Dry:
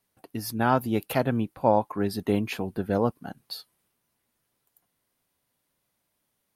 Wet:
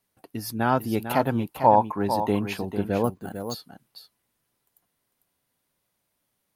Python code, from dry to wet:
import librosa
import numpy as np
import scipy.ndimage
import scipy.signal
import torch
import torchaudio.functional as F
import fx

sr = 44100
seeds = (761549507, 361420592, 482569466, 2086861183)

y = fx.peak_eq(x, sr, hz=900.0, db=9.0, octaves=0.45, at=(1.0, 2.54))
y = y + 10.0 ** (-9.0 / 20.0) * np.pad(y, (int(449 * sr / 1000.0), 0))[:len(y)]
y = fx.resample_bad(y, sr, factor=4, down='filtered', up='hold', at=(3.04, 3.54))